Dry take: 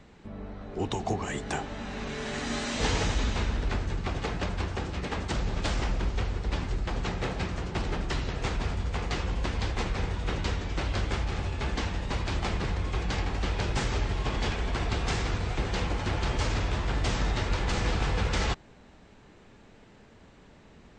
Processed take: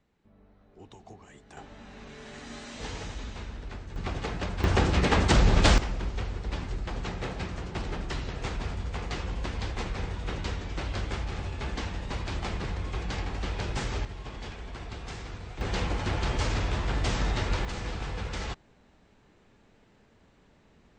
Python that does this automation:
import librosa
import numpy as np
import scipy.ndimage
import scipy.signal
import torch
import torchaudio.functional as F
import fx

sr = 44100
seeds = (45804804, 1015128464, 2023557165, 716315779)

y = fx.gain(x, sr, db=fx.steps((0.0, -19.0), (1.57, -10.5), (3.96, -1.5), (4.64, 9.5), (5.78, -3.0), (14.05, -10.5), (15.61, 0.0), (17.65, -7.0)))